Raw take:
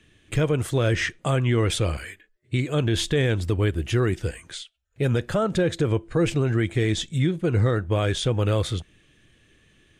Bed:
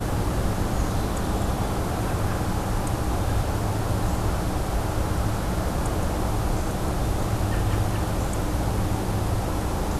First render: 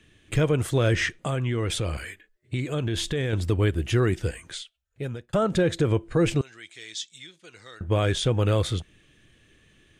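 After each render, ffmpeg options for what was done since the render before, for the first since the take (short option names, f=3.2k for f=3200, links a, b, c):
-filter_complex "[0:a]asettb=1/sr,asplit=3[a][b][c];[a]atrim=end=1.194[d];[b]atrim=start=1.19:end=3.33,asetpts=PTS-STARTPTS,afade=t=in:d=0.004:c=qsin,afade=t=out:st=2.136:d=0.004:c=qsin,acompressor=threshold=-25dB:ratio=2.5:attack=3.2:release=140:knee=1:detection=peak[e];[c]atrim=start=3.326[f];[d][e]acrossfade=d=0.004:c1=hsin:c2=qsin[g];[g][f]acrossfade=d=0.004:c1=qsin:c2=hsin,asettb=1/sr,asplit=3[h][i][j];[h]atrim=end=6.414[k];[i]atrim=start=6.41:end=7.81,asetpts=PTS-STARTPTS,afade=t=in:d=0.004:c=qsin,afade=t=out:st=1.396:d=0.004:c=qsin,bandpass=f=5.3k:t=q:w=1.5[l];[j]atrim=start=7.806[m];[k][l]acrossfade=d=0.004:c1=hsin:c2=qsin[n];[n][m]acrossfade=d=0.004:c1=qsin:c2=hsin,asplit=2[o][p];[o]atrim=end=5.33,asetpts=PTS-STARTPTS,afade=t=out:st=4.56:d=0.77[q];[p]atrim=start=5.33,asetpts=PTS-STARTPTS,afade=t=in:d=0.004:c=hsin[r];[q][r]concat=n=2:v=0:a=1"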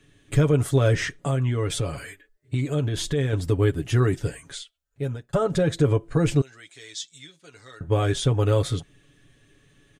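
-af "equalizer=f=2.6k:t=o:w=1.2:g=-5.5,aecho=1:1:7.1:0.69"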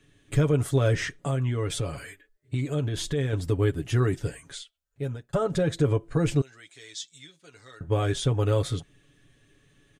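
-af "volume=-3dB"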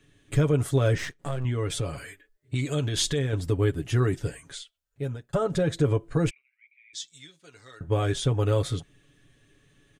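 -filter_complex "[0:a]asettb=1/sr,asplit=3[a][b][c];[a]atrim=end=0.984[d];[b]atrim=start=0.98:end=1.45,asetpts=PTS-STARTPTS,afade=t=in:d=0.004:c=qsin,afade=t=out:st=0.466:d=0.004:c=qsin,aeval=exprs='if(lt(val(0),0),0.251*val(0),val(0))':c=same[e];[c]atrim=start=1.446[f];[d][e]acrossfade=d=0.004:c1=hsin:c2=qsin[g];[g][f]acrossfade=d=0.004:c1=qsin:c2=hsin,asettb=1/sr,asplit=3[h][i][j];[h]atrim=end=2.554[k];[i]atrim=start=2.55:end=3.19,asetpts=PTS-STARTPTS,afade=t=in:d=0.004:c=qsin,afade=t=out:st=0.636:d=0.004:c=qsin,equalizer=f=5.6k:w=0.34:g=8.5[l];[j]atrim=start=3.186[m];[k][l]acrossfade=d=0.004:c1=hsin:c2=qsin[n];[n][m]acrossfade=d=0.004:c1=qsin:c2=hsin,asplit=3[o][p][q];[o]afade=t=out:st=6.29:d=0.02[r];[p]asuperpass=centerf=2300:order=4:qfactor=7.9,afade=t=in:st=6.29:d=0.02,afade=t=out:st=6.93:d=0.02[s];[q]afade=t=in:st=6.93:d=0.02[t];[r][s][t]amix=inputs=3:normalize=0"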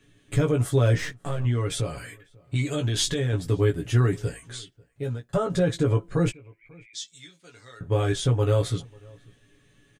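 -filter_complex "[0:a]asplit=2[a][b];[b]adelay=17,volume=-4.5dB[c];[a][c]amix=inputs=2:normalize=0,asplit=2[d][e];[e]adelay=542.3,volume=-26dB,highshelf=f=4k:g=-12.2[f];[d][f]amix=inputs=2:normalize=0"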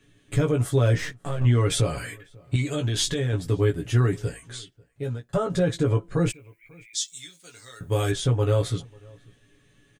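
-filter_complex "[0:a]asettb=1/sr,asplit=3[a][b][c];[a]atrim=end=1.414[d];[b]atrim=start=1.41:end=2.56,asetpts=PTS-STARTPTS,afade=t=in:d=0.004:c=qsin,afade=t=out:st=1.146:d=0.004:c=qsin,acontrast=28[e];[c]atrim=start=2.556[f];[d][e]acrossfade=d=0.004:c1=hsin:c2=qsin[g];[g][f]acrossfade=d=0.004:c1=qsin:c2=hsin,asplit=3[h][i][j];[h]afade=t=out:st=6.29:d=0.02[k];[i]aemphasis=mode=production:type=75fm,afade=t=in:st=6.29:d=0.02,afade=t=out:st=8.1:d=0.02[l];[j]afade=t=in:st=8.1:d=0.02[m];[k][l][m]amix=inputs=3:normalize=0"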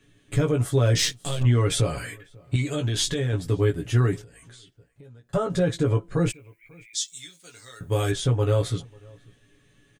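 -filter_complex "[0:a]asettb=1/sr,asplit=3[a][b][c];[a]atrim=end=0.954[d];[b]atrim=start=0.95:end=1.43,asetpts=PTS-STARTPTS,afade=t=in:d=0.004:c=qsin,afade=t=out:st=0.476:d=0.004:c=qsin,highshelf=f=2.5k:t=q:w=1.5:g=13.5[e];[c]atrim=start=1.426[f];[d][e]acrossfade=d=0.004:c1=hsin:c2=qsin[g];[g][f]acrossfade=d=0.004:c1=qsin:c2=hsin,asettb=1/sr,asplit=3[h][i][j];[h]atrim=end=4.214[k];[i]atrim=start=4.21:end=5.31,asetpts=PTS-STARTPTS,afade=t=in:d=0.004:c=qsin,afade=t=out:st=1.096:d=0.004:c=qsin,acompressor=threshold=-44dB:ratio=12:attack=3.2:release=140:knee=1:detection=peak[l];[j]atrim=start=5.306[m];[k][l]acrossfade=d=0.004:c1=hsin:c2=qsin[n];[n][m]acrossfade=d=0.004:c1=qsin:c2=hsin"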